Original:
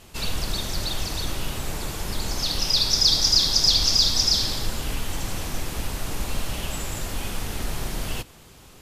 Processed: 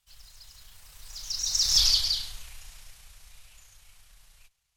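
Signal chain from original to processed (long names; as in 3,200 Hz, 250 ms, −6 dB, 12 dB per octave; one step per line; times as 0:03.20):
source passing by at 0:03.38, 40 m/s, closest 10 metres
time stretch by overlap-add 0.54×, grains 69 ms
guitar amp tone stack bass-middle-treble 10-0-10
level +3 dB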